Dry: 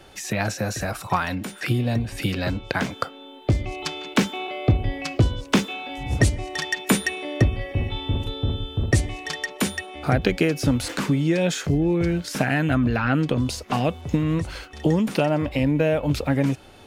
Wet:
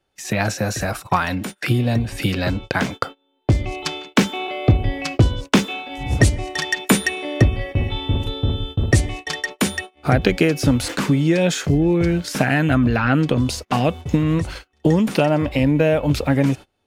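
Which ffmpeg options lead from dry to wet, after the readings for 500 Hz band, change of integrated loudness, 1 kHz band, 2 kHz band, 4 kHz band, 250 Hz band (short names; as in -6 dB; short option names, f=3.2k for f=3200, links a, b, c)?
+4.0 dB, +4.0 dB, +4.0 dB, +4.0 dB, +4.0 dB, +4.0 dB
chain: -af "agate=range=-28dB:threshold=-33dB:ratio=16:detection=peak,volume=4dB"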